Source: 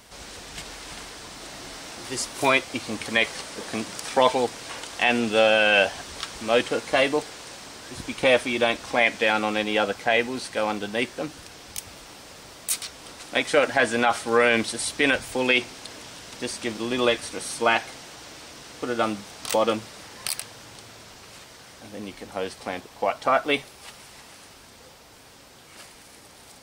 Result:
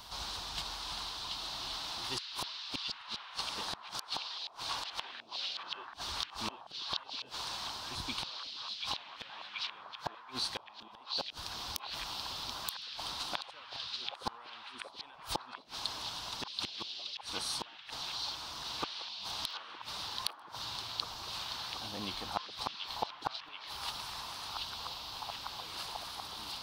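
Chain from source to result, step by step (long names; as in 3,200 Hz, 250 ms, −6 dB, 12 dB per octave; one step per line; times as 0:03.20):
gate with flip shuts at −19 dBFS, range −37 dB
graphic EQ with 10 bands 125 Hz −3 dB, 250 Hz −7 dB, 500 Hz −11 dB, 1,000 Hz +9 dB, 2,000 Hz −11 dB, 4,000 Hz +10 dB, 8,000 Hz −10 dB
echo through a band-pass that steps 732 ms, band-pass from 3,500 Hz, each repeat −0.7 octaves, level 0 dB
speech leveller within 3 dB 0.5 s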